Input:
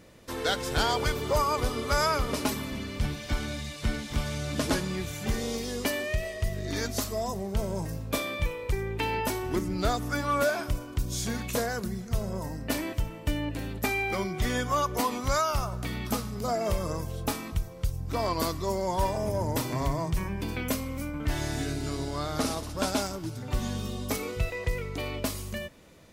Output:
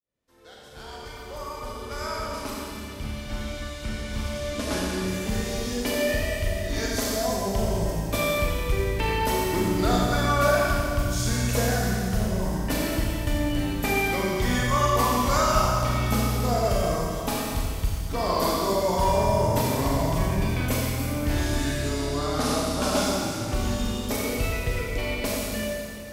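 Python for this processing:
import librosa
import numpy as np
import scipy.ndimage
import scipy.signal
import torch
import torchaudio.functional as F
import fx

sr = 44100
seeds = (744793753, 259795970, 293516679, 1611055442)

y = fx.fade_in_head(x, sr, length_s=7.14)
y = fx.rev_schroeder(y, sr, rt60_s=2.4, comb_ms=29, drr_db=-4.5)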